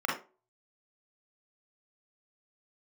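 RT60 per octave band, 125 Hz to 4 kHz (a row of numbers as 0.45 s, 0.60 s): 0.30 s, 0.35 s, 0.40 s, 0.30 s, 0.25 s, 0.20 s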